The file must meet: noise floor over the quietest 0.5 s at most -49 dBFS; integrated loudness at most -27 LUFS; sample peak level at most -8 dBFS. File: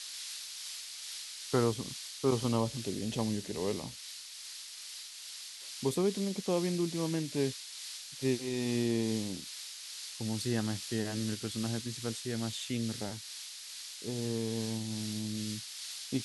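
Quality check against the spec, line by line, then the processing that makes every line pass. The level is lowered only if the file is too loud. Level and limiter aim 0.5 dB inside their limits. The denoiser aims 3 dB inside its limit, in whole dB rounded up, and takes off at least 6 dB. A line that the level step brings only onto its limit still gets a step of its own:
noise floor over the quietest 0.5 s -47 dBFS: fail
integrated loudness -35.5 LUFS: OK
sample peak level -16.0 dBFS: OK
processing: denoiser 6 dB, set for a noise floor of -47 dBFS

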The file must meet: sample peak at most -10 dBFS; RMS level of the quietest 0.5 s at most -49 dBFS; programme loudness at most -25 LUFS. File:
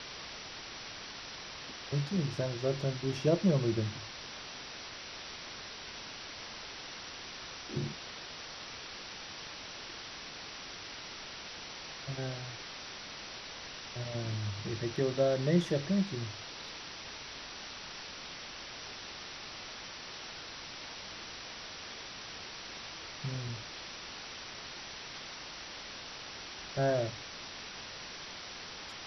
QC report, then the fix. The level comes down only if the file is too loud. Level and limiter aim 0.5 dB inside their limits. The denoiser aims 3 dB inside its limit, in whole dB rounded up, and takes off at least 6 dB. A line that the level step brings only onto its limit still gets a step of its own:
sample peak -14.5 dBFS: OK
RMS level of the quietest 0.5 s -45 dBFS: fail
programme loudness -38.0 LUFS: OK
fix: denoiser 7 dB, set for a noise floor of -45 dBFS

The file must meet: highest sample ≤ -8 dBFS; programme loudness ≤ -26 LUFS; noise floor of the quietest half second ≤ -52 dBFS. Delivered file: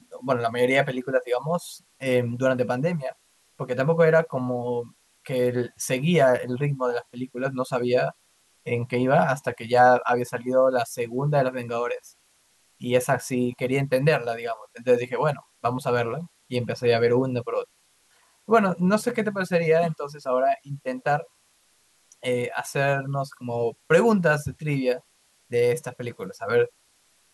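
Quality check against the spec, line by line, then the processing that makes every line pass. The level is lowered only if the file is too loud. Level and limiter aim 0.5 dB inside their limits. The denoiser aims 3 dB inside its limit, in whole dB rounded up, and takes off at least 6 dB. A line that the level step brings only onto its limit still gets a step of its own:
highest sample -6.5 dBFS: fail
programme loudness -24.5 LUFS: fail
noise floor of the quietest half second -63 dBFS: OK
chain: gain -2 dB

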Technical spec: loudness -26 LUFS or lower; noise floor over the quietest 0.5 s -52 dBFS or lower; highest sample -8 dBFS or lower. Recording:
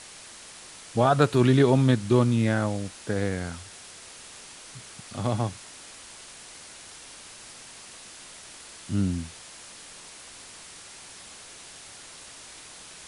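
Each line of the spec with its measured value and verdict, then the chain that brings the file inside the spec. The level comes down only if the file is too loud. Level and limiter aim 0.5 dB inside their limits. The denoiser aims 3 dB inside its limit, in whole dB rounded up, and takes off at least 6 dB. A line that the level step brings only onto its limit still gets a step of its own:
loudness -24.5 LUFS: fail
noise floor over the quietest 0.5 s -46 dBFS: fail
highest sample -6.0 dBFS: fail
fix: denoiser 7 dB, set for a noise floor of -46 dBFS; gain -2 dB; limiter -8.5 dBFS

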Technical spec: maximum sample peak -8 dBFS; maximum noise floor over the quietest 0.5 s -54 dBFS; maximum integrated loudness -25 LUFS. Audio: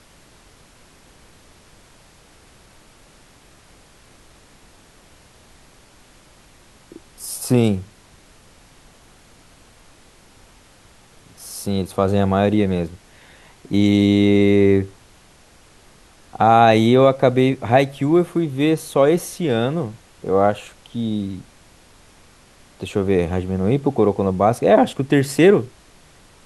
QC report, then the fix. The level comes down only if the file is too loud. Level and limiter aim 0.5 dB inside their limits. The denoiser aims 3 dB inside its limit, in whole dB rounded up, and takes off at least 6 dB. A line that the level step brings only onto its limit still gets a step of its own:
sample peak -1.5 dBFS: fail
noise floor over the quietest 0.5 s -50 dBFS: fail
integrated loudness -18.0 LUFS: fail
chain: gain -7.5 dB

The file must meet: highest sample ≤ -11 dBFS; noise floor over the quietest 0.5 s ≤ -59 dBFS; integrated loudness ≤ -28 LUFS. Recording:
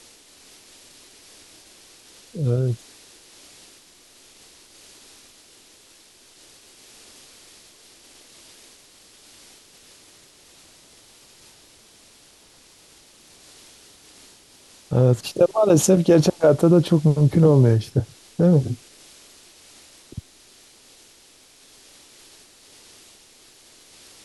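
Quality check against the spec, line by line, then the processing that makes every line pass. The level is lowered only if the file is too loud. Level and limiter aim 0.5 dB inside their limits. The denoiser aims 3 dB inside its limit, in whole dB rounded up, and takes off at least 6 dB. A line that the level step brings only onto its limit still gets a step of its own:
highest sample -5.5 dBFS: fail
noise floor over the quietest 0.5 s -52 dBFS: fail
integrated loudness -18.5 LUFS: fail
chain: gain -10 dB

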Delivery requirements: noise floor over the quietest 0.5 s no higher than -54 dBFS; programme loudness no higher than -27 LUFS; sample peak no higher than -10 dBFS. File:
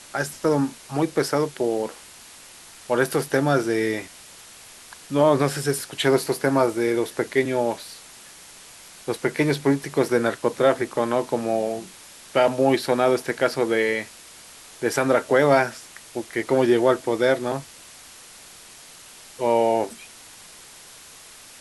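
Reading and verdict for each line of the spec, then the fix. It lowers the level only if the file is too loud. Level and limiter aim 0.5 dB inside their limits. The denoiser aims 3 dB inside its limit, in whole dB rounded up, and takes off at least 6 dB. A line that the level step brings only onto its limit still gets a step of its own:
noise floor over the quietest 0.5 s -45 dBFS: fail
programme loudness -22.5 LUFS: fail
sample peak -5.5 dBFS: fail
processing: denoiser 7 dB, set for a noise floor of -45 dBFS; gain -5 dB

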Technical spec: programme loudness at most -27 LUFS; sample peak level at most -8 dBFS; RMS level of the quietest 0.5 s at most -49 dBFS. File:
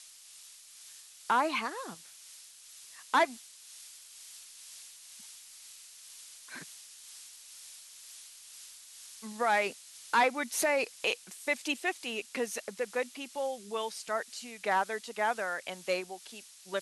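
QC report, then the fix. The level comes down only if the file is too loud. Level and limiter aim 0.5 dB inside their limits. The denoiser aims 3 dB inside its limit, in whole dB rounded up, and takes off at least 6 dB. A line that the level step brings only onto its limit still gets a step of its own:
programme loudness -32.5 LUFS: OK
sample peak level -16.0 dBFS: OK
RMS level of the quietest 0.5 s -53 dBFS: OK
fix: none

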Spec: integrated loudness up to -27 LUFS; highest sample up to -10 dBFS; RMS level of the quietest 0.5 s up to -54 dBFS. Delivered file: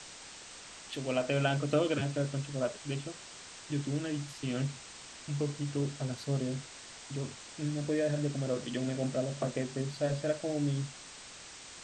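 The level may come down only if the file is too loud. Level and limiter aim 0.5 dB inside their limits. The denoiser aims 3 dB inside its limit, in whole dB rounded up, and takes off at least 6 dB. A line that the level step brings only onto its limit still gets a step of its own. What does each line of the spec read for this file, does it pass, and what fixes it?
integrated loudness -34.5 LUFS: OK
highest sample -16.0 dBFS: OK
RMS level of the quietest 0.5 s -49 dBFS: fail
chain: denoiser 8 dB, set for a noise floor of -49 dBFS

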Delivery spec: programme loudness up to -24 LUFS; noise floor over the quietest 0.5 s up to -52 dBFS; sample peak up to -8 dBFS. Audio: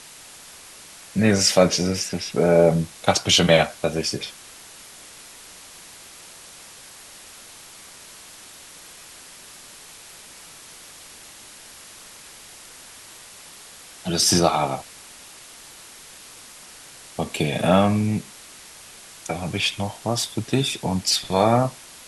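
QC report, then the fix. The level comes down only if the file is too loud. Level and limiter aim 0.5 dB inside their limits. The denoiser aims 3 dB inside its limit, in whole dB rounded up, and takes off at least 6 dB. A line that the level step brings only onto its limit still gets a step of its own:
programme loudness -21.0 LUFS: fail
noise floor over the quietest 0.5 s -44 dBFS: fail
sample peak -3.0 dBFS: fail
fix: denoiser 8 dB, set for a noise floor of -44 dBFS; gain -3.5 dB; limiter -8.5 dBFS

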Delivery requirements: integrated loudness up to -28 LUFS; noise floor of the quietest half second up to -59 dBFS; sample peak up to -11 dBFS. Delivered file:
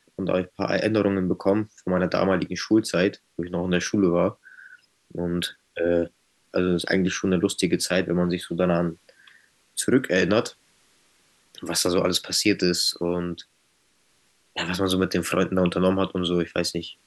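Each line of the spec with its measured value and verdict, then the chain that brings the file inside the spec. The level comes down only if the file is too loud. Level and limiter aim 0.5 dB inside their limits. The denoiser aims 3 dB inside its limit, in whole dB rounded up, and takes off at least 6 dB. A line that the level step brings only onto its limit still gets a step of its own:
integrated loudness -24.0 LUFS: fail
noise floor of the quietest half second -65 dBFS: OK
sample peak -6.5 dBFS: fail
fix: gain -4.5 dB; limiter -11.5 dBFS

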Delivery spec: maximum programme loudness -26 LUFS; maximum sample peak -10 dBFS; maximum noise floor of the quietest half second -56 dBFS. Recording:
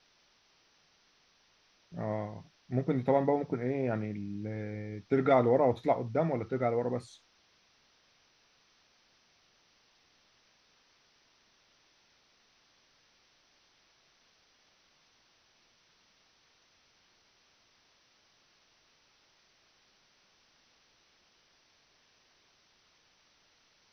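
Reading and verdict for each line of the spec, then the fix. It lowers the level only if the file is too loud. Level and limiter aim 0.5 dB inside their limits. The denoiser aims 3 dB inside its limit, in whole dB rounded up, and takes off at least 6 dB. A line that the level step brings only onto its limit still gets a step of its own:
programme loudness -31.0 LUFS: OK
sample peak -12.5 dBFS: OK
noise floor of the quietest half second -68 dBFS: OK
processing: none

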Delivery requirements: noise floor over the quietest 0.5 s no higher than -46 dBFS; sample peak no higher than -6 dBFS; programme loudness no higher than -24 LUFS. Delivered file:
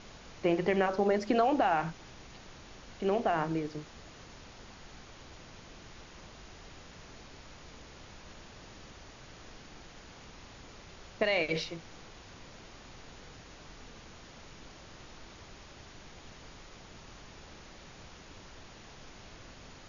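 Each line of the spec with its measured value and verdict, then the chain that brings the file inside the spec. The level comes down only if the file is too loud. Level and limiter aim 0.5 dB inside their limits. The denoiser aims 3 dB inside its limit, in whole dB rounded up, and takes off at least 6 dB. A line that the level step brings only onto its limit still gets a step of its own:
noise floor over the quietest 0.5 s -51 dBFS: OK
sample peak -14.5 dBFS: OK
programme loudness -30.5 LUFS: OK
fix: none

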